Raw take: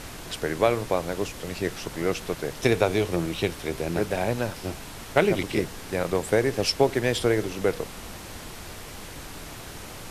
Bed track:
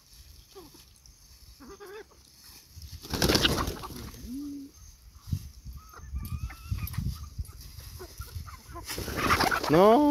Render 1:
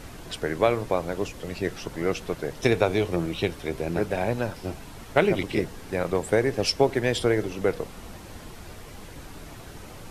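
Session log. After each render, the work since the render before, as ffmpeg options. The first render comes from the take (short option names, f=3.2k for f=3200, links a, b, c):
-af "afftdn=nr=7:nf=-40"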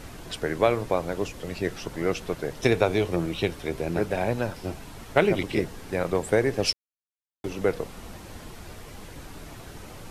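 -filter_complex "[0:a]asplit=3[a][b][c];[a]atrim=end=6.73,asetpts=PTS-STARTPTS,afade=t=out:st=6.726:d=0.004:c=hsin[d];[b]atrim=start=6.73:end=7.44,asetpts=PTS-STARTPTS,volume=0[e];[c]atrim=start=7.44,asetpts=PTS-STARTPTS,afade=t=in:d=0.004:c=hsin[f];[d][e][f]concat=n=3:v=0:a=1"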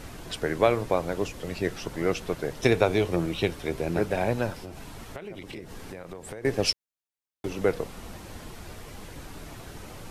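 -filter_complex "[0:a]asettb=1/sr,asplit=3[a][b][c];[a]atrim=end=4.574[d];[b]atrim=start=4.57:end=6.45,asetpts=PTS-STARTPTS,afade=t=in:d=0.004:c=qsin,afade=t=out:st=1.876:d=0.004:c=qsin,acompressor=threshold=-35dB:ratio=12:attack=3.2:release=140:knee=1:detection=peak[e];[c]atrim=start=6.446[f];[d][e]acrossfade=d=0.004:c1=hsin:c2=qsin[g];[g][f]acrossfade=d=0.004:c1=qsin:c2=hsin"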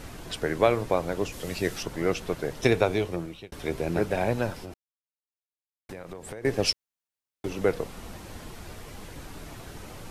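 -filter_complex "[0:a]asettb=1/sr,asplit=3[a][b][c];[a]atrim=end=1.324[d];[b]atrim=start=1.32:end=1.83,asetpts=PTS-STARTPTS,afade=t=in:d=0.004:c=qsin,afade=t=out:st=0.506:d=0.004:c=qsin,highshelf=f=3.8k:g=8.5[e];[c]atrim=start=1.826[f];[d][e]acrossfade=d=0.004:c1=hsin:c2=qsin[g];[g][f]acrossfade=d=0.004:c1=qsin:c2=hsin,asplit=4[h][i][j][k];[h]atrim=end=3.52,asetpts=PTS-STARTPTS,afade=t=out:st=2.52:d=1:c=qsin[l];[i]atrim=start=3.52:end=4.74,asetpts=PTS-STARTPTS,afade=t=in:d=0.004:c=hsin,afade=t=out:st=1.216:d=0.004:c=hsin[m];[j]atrim=start=4.74:end=5.89,asetpts=PTS-STARTPTS,volume=0[n];[k]atrim=start=5.89,asetpts=PTS-STARTPTS,afade=t=in:d=0.004:c=hsin[o];[l][m][n][o]concat=n=4:v=0:a=1"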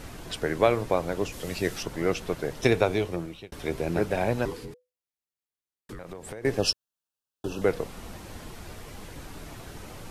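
-filter_complex "[0:a]asettb=1/sr,asplit=3[a][b][c];[a]atrim=end=4.454[d];[b]atrim=start=4.45:end=5.99,asetpts=PTS-STARTPTS,afade=t=in:d=0.004:c=qsin,afade=t=out:st=1.536:d=0.004:c=qsin,afreqshift=-500[e];[c]atrim=start=5.986[f];[d][e]acrossfade=d=0.004:c1=hsin:c2=qsin[g];[g][f]acrossfade=d=0.004:c1=qsin:c2=hsin,asettb=1/sr,asplit=3[h][i][j];[h]atrim=end=6.594[k];[i]atrim=start=6.59:end=7.62,asetpts=PTS-STARTPTS,afade=t=in:d=0.004:c=qsin,afade=t=out:st=1.026:d=0.004:c=qsin,asuperstop=centerf=2100:order=12:qfactor=2.9[l];[j]atrim=start=7.616[m];[k][l]acrossfade=d=0.004:c1=hsin:c2=qsin[n];[n][m]acrossfade=d=0.004:c1=qsin:c2=hsin"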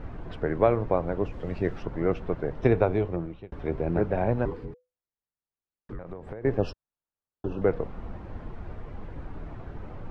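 -af "lowpass=1.4k,lowshelf=f=100:g=7.5"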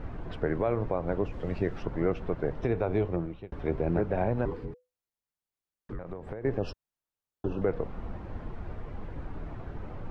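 -af "alimiter=limit=-16.5dB:level=0:latency=1:release=125"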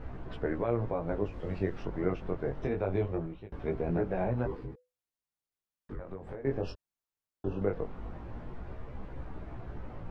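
-af "flanger=delay=15.5:depth=6.5:speed=0.22"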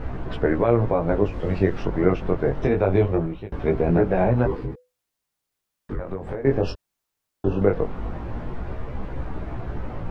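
-af "volume=11.5dB"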